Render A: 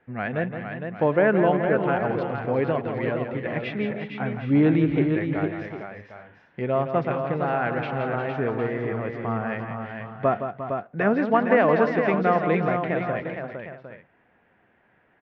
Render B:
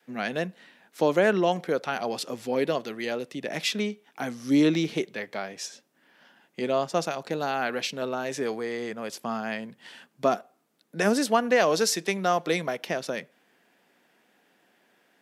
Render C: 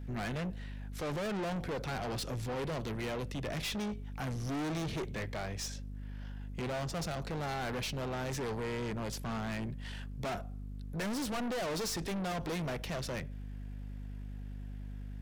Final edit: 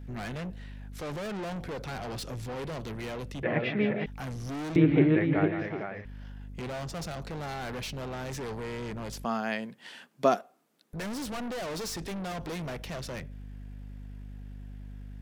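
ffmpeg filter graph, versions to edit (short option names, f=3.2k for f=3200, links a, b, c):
-filter_complex "[0:a]asplit=2[a][b];[2:a]asplit=4[c][d][e][f];[c]atrim=end=3.432[g];[a]atrim=start=3.428:end=4.062[h];[d]atrim=start=4.058:end=4.762[i];[b]atrim=start=4.758:end=6.052[j];[e]atrim=start=6.048:end=9.252[k];[1:a]atrim=start=9.248:end=10.932[l];[f]atrim=start=10.928[m];[g][h]acrossfade=d=0.004:c1=hsin:c2=hsin[n];[n][i]acrossfade=d=0.004:c1=hsin:c2=hsin[o];[o][j]acrossfade=d=0.004:c1=hsin:c2=hsin[p];[p][k]acrossfade=d=0.004:c1=hsin:c2=hsin[q];[q][l]acrossfade=d=0.004:c1=hsin:c2=hsin[r];[r][m]acrossfade=d=0.004:c1=hsin:c2=hsin"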